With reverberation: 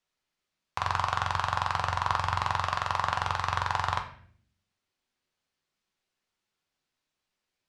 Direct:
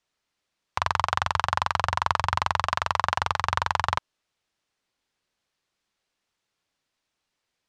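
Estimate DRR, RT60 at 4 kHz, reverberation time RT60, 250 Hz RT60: 3.0 dB, 0.45 s, 0.60 s, 1.0 s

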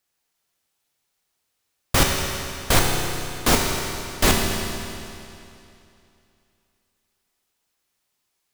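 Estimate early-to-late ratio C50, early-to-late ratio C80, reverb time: 1.5 dB, 2.5 dB, 2.7 s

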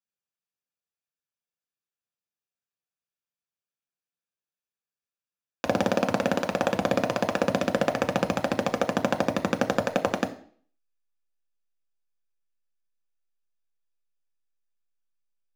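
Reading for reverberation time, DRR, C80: 0.50 s, 5.5 dB, 18.0 dB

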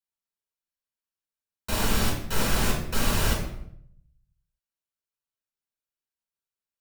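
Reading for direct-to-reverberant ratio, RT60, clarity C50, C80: −2.5 dB, 0.70 s, 4.5 dB, 8.5 dB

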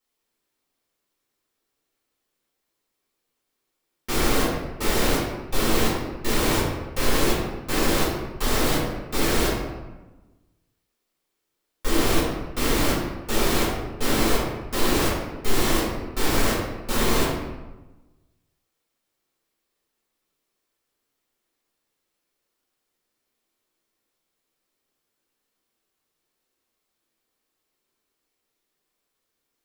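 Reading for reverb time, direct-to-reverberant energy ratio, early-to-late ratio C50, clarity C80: 1.1 s, −8.5 dB, 0.5 dB, 3.0 dB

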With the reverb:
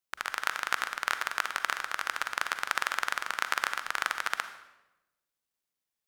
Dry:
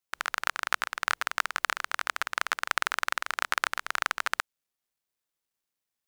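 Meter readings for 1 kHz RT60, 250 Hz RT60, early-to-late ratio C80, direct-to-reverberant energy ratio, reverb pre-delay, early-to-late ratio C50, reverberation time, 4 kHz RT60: 0.90 s, 1.2 s, 12.5 dB, 9.5 dB, 38 ms, 10.5 dB, 1.0 s, 0.75 s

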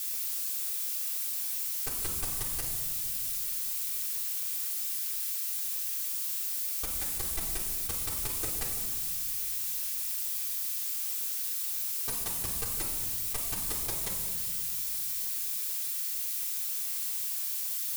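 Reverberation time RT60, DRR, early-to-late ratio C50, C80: 1.7 s, −3.5 dB, 2.5 dB, 4.5 dB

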